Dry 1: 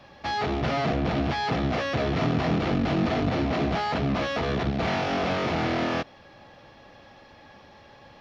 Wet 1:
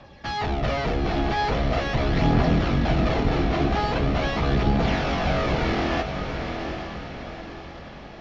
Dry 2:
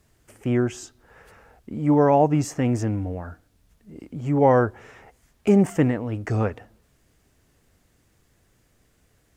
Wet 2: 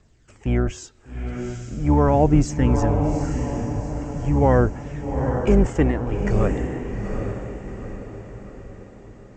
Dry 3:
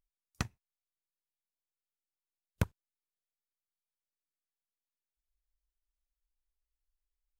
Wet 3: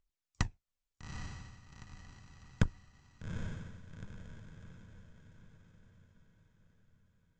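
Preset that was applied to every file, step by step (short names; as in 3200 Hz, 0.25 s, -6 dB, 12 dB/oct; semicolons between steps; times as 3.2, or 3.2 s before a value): octaver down 2 oct, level -3 dB; steep low-pass 8000 Hz 96 dB/oct; phaser 0.42 Hz, delay 2.9 ms, feedback 39%; diffused feedback echo 0.812 s, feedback 47%, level -6 dB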